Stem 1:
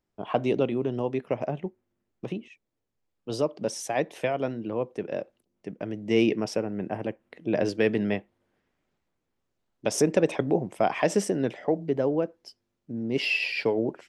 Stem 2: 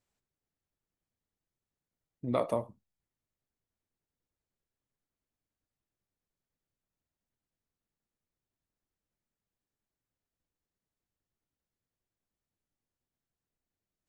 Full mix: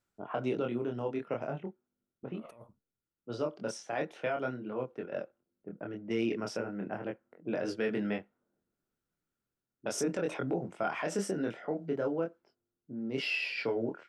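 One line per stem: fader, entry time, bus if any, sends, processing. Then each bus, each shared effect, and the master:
-3.5 dB, 0.00 s, no send, HPF 100 Hz; low-pass opened by the level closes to 390 Hz, open at -24.5 dBFS; chorus 0.39 Hz, depth 3.7 ms
-7.0 dB, 0.00 s, no send, negative-ratio compressor -39 dBFS, ratio -1; auto duck -8 dB, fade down 0.45 s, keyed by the first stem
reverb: off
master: bell 1400 Hz +13 dB 0.26 oct; limiter -22.5 dBFS, peak gain reduction 7 dB

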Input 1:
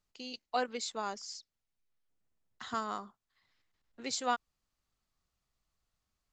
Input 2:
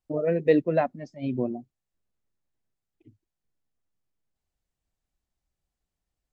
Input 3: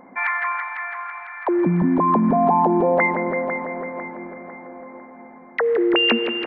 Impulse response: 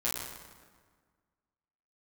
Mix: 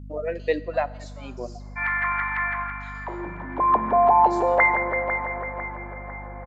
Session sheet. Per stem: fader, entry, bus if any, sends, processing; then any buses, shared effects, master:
-9.0 dB, 0.20 s, send -7 dB, compressor 1.5:1, threshold -51 dBFS, peak gain reduction 9 dB
+2.0 dB, 0.00 s, send -22 dB, reverb removal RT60 0.79 s
+1.0 dB, 1.60 s, send -16 dB, auto duck -15 dB, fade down 0.45 s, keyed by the second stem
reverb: on, RT60 1.6 s, pre-delay 8 ms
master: HPF 620 Hz 12 dB/oct; hum 50 Hz, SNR 15 dB

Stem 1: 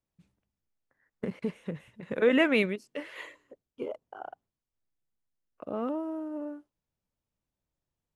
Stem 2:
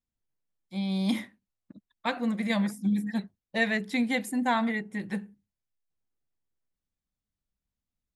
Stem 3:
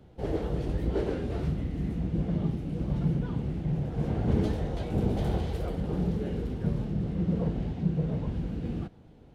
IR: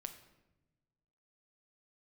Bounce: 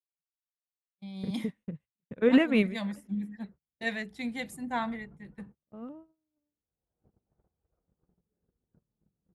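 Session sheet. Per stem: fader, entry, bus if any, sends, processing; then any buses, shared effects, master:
0.0 dB, 0.00 s, no send, tone controls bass +15 dB, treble 0 dB; upward expander 2.5:1, over -36 dBFS
-9.0 dB, 0.25 s, no send, three-band expander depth 100%
-18.5 dB, 2.10 s, no send, compressor 10:1, threshold -33 dBFS, peak gain reduction 14 dB; synth low-pass 1300 Hz, resonance Q 2; auto duck -16 dB, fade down 0.25 s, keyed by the first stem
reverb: off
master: gate -50 dBFS, range -30 dB

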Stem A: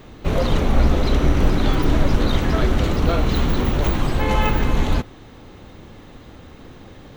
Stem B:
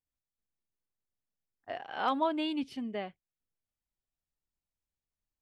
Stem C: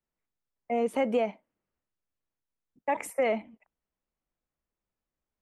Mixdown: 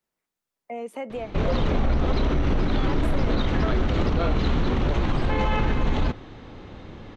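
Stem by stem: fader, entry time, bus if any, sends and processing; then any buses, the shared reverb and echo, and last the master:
+0.5 dB, 1.10 s, no send, Bessel low-pass 4200 Hz, order 4
-6.5 dB, 0.00 s, no send, dry
-5.0 dB, 0.00 s, no send, HPF 210 Hz 6 dB/oct; three-band squash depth 40%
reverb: off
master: limiter -14 dBFS, peak gain reduction 9.5 dB

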